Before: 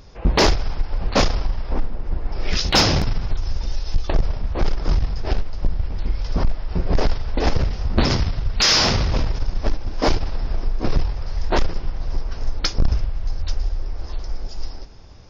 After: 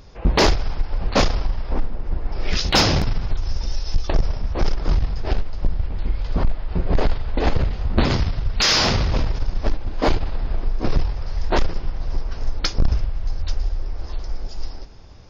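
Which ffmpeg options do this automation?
-af "asetnsamples=n=441:p=0,asendcmd='3.49 equalizer g 5;4.74 equalizer g -5;5.86 equalizer g -14;8.14 equalizer g -4;9.73 equalizer g -13;10.67 equalizer g -2.5',equalizer=f=5.5k:t=o:w=0.29:g=-2.5"

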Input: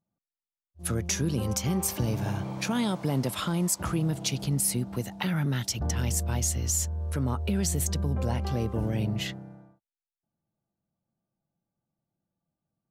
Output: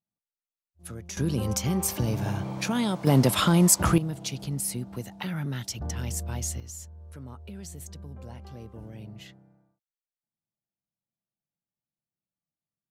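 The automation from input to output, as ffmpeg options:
-af "asetnsamples=n=441:p=0,asendcmd='1.17 volume volume 1dB;3.07 volume volume 8dB;3.98 volume volume -4dB;6.6 volume volume -14dB',volume=-10.5dB"

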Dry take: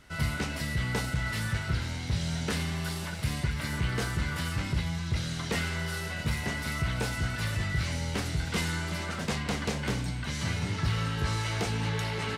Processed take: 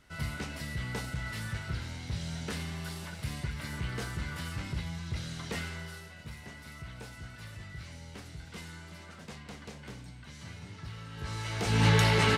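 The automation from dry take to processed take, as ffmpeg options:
-af "volume=16.5dB,afade=t=out:st=5.59:d=0.52:silence=0.375837,afade=t=in:st=11.08:d=0.54:silence=0.266073,afade=t=in:st=11.62:d=0.24:silence=0.281838"

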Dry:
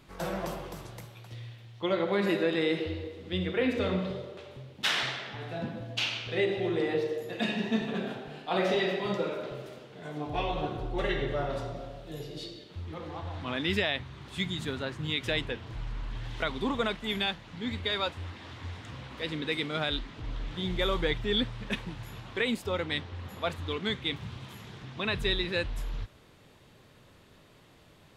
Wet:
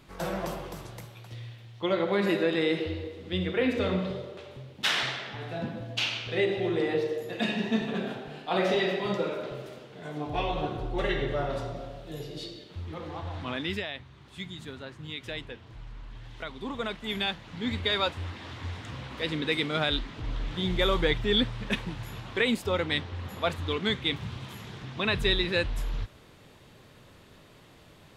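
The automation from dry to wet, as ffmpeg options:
-af "volume=12dB,afade=t=out:st=13.41:d=0.45:silence=0.375837,afade=t=in:st=16.58:d=1.15:silence=0.298538"

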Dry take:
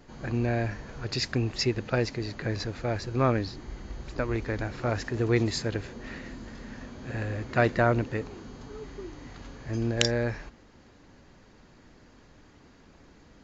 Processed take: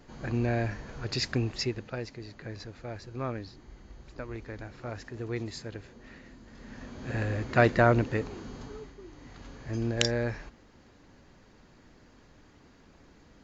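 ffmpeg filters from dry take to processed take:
-af "volume=17.5dB,afade=t=out:st=1.36:d=0.59:silence=0.354813,afade=t=in:st=6.46:d=0.67:silence=0.266073,afade=t=out:st=8.62:d=0.34:silence=0.298538,afade=t=in:st=8.96:d=0.58:silence=0.446684"

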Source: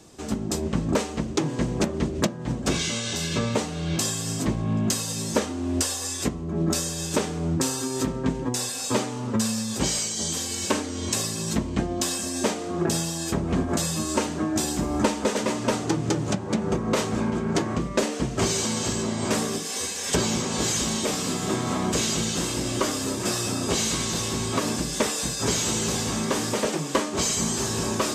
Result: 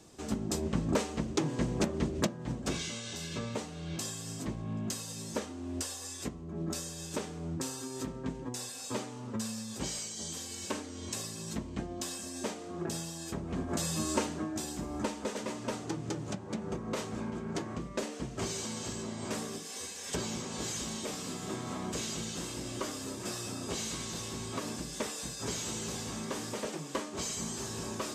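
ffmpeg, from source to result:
-af "volume=1dB,afade=t=out:st=2.11:d=0.86:silence=0.501187,afade=t=in:st=13.54:d=0.53:silence=0.446684,afade=t=out:st=14.07:d=0.48:silence=0.446684"

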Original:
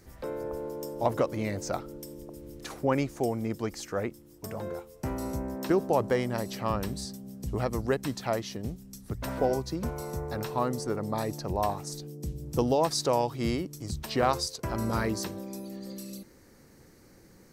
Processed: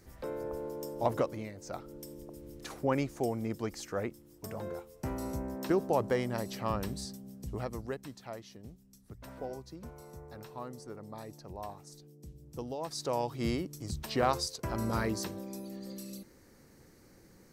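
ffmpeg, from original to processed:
-af "volume=19.5dB,afade=t=out:st=1.18:d=0.36:silence=0.251189,afade=t=in:st=1.54:d=0.51:silence=0.266073,afade=t=out:st=7.08:d=1.04:silence=0.298538,afade=t=in:st=12.79:d=0.67:silence=0.281838"

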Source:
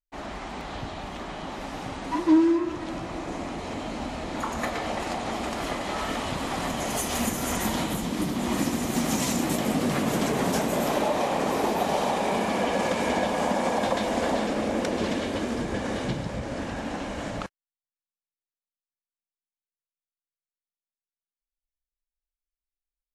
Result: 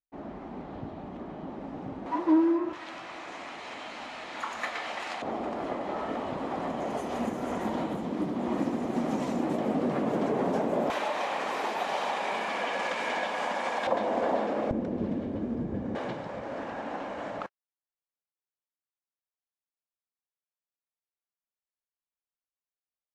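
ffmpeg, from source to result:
-af "asetnsamples=n=441:p=0,asendcmd='2.06 bandpass f 670;2.73 bandpass f 2100;5.22 bandpass f 470;10.9 bandpass f 1800;13.87 bandpass f 670;14.71 bandpass f 160;15.95 bandpass f 820',bandpass=f=260:t=q:w=0.72:csg=0"

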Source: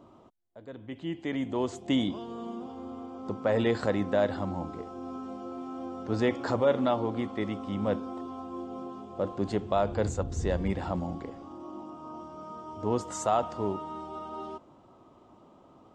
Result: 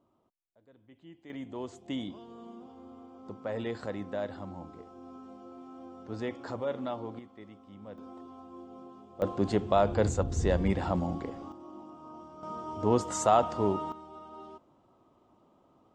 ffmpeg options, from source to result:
-af "asetnsamples=n=441:p=0,asendcmd='1.3 volume volume -9dB;7.19 volume volume -17.5dB;7.98 volume volume -9dB;9.22 volume volume 2dB;11.52 volume volume -5dB;12.43 volume volume 3dB;13.92 volume volume -8dB',volume=-17dB"

